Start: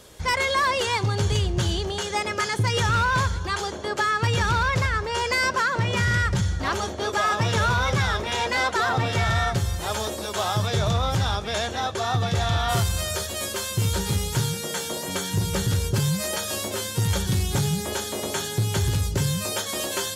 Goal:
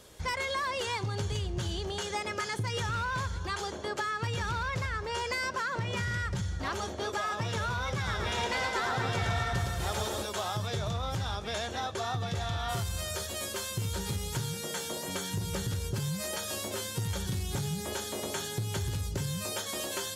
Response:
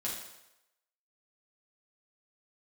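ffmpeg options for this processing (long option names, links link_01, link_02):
-filter_complex "[0:a]acompressor=threshold=-24dB:ratio=6,asettb=1/sr,asplit=3[link_01][link_02][link_03];[link_01]atrim=end=7.954[link_04];[link_02]atrim=start=7.95:end=10.23,asetpts=PTS-STARTPTS,afade=type=in:duration=0.004:curve=qsin,afade=type=out:start_time=2.276:duration=0.004:curve=qsin,aecho=1:1:110|247.5|419.4|634.2|902.8:0.631|0.398|0.251|0.158|0.1,atrim=end_sample=100548[link_05];[link_03]atrim=start=10.226[link_06];[link_04][link_05]acrossfade=duration=0.004:curve1=hsin:curve2=qsin[link_07];[link_07][link_06]acrossfade=duration=0.004:curve1=qsin:curve2=hsin,volume=-5.5dB"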